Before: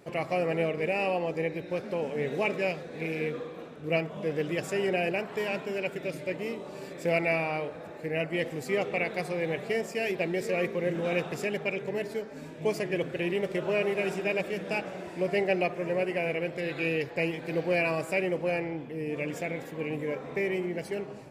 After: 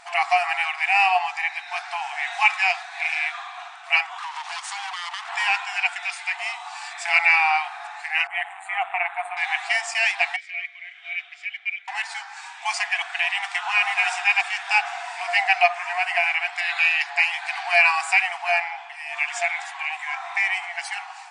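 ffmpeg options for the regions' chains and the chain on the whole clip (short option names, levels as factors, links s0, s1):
-filter_complex "[0:a]asettb=1/sr,asplit=3[s0][s1][s2];[s0]atrim=end=4.184[s3];[s1]atrim=start=4.18:end=5.29,asetpts=PTS-STARTPTS,afade=t=in:d=0.004:c=qsin,afade=t=out:st=1.106:d=0.004:c=qsin,highpass=f=420:w=0.5412,highpass=f=420:w=1.3066,aeval=exprs='abs(val(0))':c=same,acompressor=threshold=0.0158:ratio=10:attack=3.2:release=140:knee=1:detection=peak[s4];[s2]atrim=start=5.286[s5];[s3][s4]acrossfade=d=0.004:c1=hsin:c2=qsin[s6];[s6][s5]acrossfade=d=0.004:c1=qsin:c2=hsin,asettb=1/sr,asplit=3[s7][s8][s9];[s7]atrim=end=8.274[s10];[s8]atrim=start=8.27:end=9.37,asetpts=PTS-STARTPTS,afade=t=in:d=0.004:c=qsin,afade=t=out:st=1.096:d=0.004:c=qsin,tremolo=f=190:d=0.71,asuperstop=centerf=5300:order=4:qfactor=0.83,adynamicequalizer=threshold=0.00398:dfrequency=1500:dqfactor=0.7:tfrequency=1500:tqfactor=0.7:attack=5:release=100:ratio=0.375:range=2.5:mode=cutabove:tftype=highshelf[s11];[s9]atrim=start=9.366[s12];[s10][s11]acrossfade=d=0.004:c1=hsin:c2=qsin[s13];[s13][s12]acrossfade=d=0.004:c1=qsin:c2=hsin,asettb=1/sr,asplit=3[s14][s15][s16];[s14]atrim=end=10.364[s17];[s15]atrim=start=10.36:end=11.88,asetpts=PTS-STARTPTS,afade=t=in:d=0.004:c=qsin,afade=t=out:st=1.516:d=0.004:c=qsin,asplit=3[s18][s19][s20];[s18]bandpass=f=270:t=q:w=8,volume=1[s21];[s19]bandpass=f=2290:t=q:w=8,volume=0.501[s22];[s20]bandpass=f=3010:t=q:w=8,volume=0.355[s23];[s21][s22][s23]amix=inputs=3:normalize=0,lowshelf=f=410:t=q:w=3:g=-13.5[s24];[s16]atrim=start=11.876[s25];[s17][s24]acrossfade=d=0.004:c1=hsin:c2=qsin[s26];[s26][s25]acrossfade=d=0.004:c1=qsin:c2=hsin,afftfilt=real='re*between(b*sr/4096,680,9800)':imag='im*between(b*sr/4096,680,9800)':win_size=4096:overlap=0.75,acontrast=70,volume=2.37"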